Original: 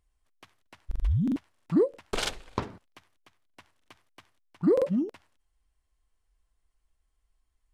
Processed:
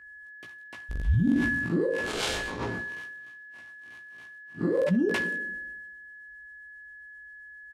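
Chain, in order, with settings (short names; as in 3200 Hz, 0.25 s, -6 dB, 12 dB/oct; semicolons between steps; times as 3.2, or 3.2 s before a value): 1.03–4.8 time blur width 0.101 s; HPF 91 Hz 6 dB/oct; limiter -26 dBFS, peak gain reduction 9 dB; rotary speaker horn 7.5 Hz; whine 1700 Hz -56 dBFS; doubler 17 ms -5 dB; two-slope reverb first 0.35 s, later 1.8 s, from -17 dB, DRR 13 dB; sustainer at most 25 dB/s; gain +7 dB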